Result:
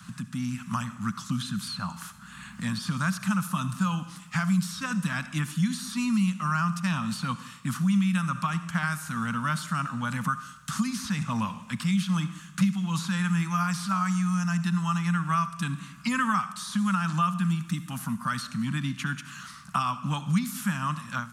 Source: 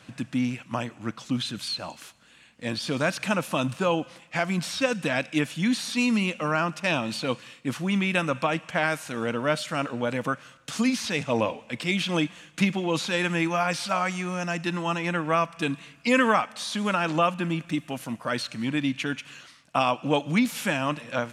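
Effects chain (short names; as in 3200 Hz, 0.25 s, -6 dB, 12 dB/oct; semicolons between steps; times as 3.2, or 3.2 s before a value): passive tone stack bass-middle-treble 6-0-2; on a send at -14.5 dB: reverb RT60 0.55 s, pre-delay 52 ms; on the sum: AGC gain up to 14 dB; EQ curve 130 Hz 0 dB, 190 Hz +10 dB, 390 Hz -21 dB, 740 Hz +1 dB, 1200 Hz +12 dB, 2300 Hz -8 dB, 12000 Hz +4 dB; three-band squash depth 70%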